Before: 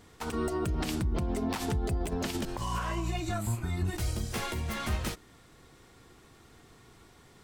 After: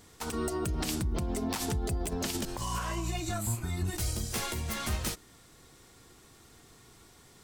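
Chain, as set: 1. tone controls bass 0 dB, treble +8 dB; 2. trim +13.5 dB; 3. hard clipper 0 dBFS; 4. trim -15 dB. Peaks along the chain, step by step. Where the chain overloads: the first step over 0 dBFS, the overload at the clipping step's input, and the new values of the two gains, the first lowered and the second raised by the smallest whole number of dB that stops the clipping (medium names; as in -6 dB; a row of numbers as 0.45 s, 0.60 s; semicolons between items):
-18.0 dBFS, -4.5 dBFS, -4.5 dBFS, -19.5 dBFS; nothing clips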